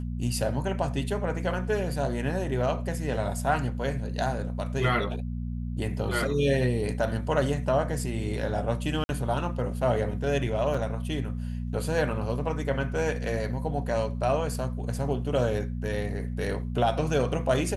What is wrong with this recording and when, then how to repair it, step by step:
mains hum 60 Hz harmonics 4 −32 dBFS
0:09.04–0:09.09: drop-out 51 ms
0:10.74: drop-out 4.6 ms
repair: hum removal 60 Hz, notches 4
repair the gap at 0:09.04, 51 ms
repair the gap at 0:10.74, 4.6 ms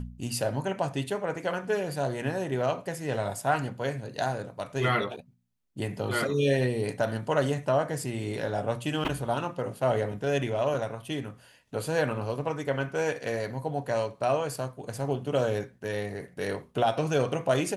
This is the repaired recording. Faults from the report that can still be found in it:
none of them is left

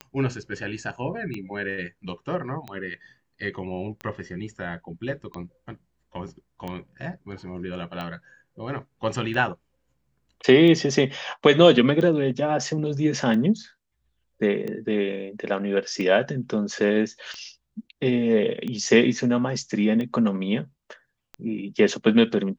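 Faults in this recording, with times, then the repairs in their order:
scratch tick 45 rpm −20 dBFS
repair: click removal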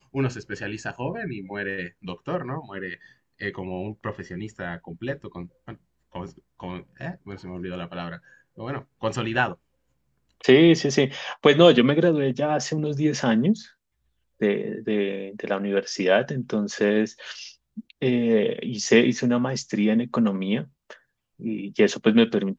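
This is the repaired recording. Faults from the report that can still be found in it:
none of them is left

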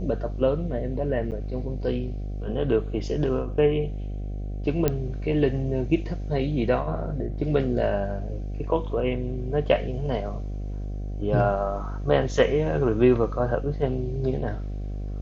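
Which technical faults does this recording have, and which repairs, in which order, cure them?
mains buzz 50 Hz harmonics 15 −31 dBFS
0:01.31–0:01.32: drop-out 8.6 ms
0:04.88: click −9 dBFS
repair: click removal
hum removal 50 Hz, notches 15
repair the gap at 0:01.31, 8.6 ms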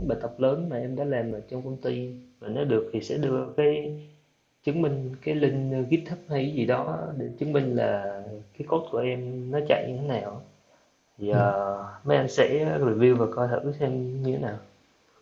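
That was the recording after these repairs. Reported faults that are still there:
none of them is left

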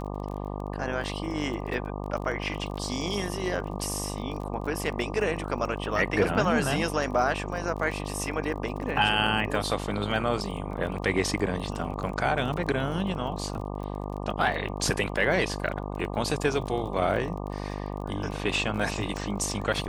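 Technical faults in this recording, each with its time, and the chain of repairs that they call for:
mains buzz 50 Hz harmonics 24 −34 dBFS
surface crackle 27 per second −35 dBFS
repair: click removal
hum removal 50 Hz, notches 24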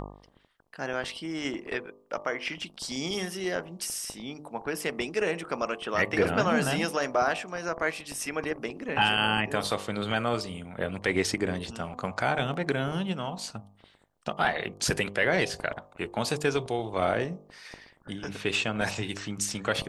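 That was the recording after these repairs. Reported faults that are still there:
none of them is left

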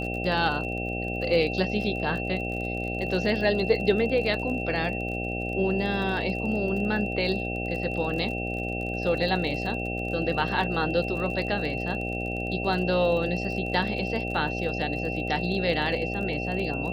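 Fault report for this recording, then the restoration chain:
mains buzz 60 Hz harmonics 13 −32 dBFS
surface crackle 33 per second −34 dBFS
whistle 2,700 Hz −33 dBFS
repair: click removal
notch filter 2,700 Hz, Q 30
hum removal 60 Hz, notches 13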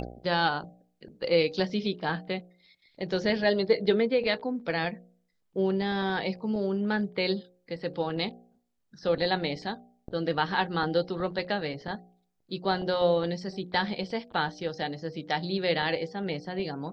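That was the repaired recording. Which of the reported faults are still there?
none of them is left

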